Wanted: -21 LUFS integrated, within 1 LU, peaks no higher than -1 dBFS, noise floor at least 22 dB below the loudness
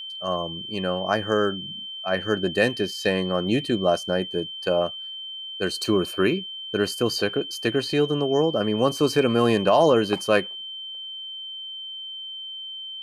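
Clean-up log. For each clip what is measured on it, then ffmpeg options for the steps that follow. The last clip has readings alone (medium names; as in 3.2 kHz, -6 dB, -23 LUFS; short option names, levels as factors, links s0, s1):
steady tone 3.1 kHz; tone level -33 dBFS; loudness -24.5 LUFS; peak level -7.0 dBFS; loudness target -21.0 LUFS
-> -af "bandreject=f=3100:w=30"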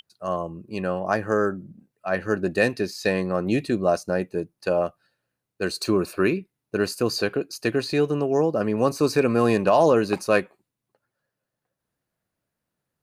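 steady tone not found; loudness -24.0 LUFS; peak level -7.0 dBFS; loudness target -21.0 LUFS
-> -af "volume=1.41"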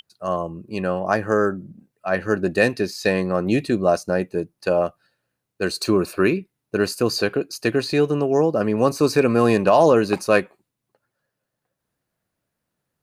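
loudness -21.0 LUFS; peak level -4.0 dBFS; noise floor -81 dBFS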